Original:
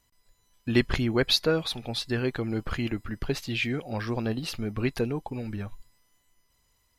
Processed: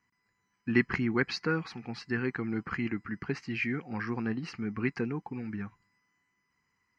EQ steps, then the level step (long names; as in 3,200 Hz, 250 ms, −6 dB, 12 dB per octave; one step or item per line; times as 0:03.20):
loudspeaker in its box 160–5,100 Hz, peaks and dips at 190 Hz +4 dB, 690 Hz +7 dB, 2,000 Hz +4 dB
phaser with its sweep stopped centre 1,500 Hz, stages 4
0.0 dB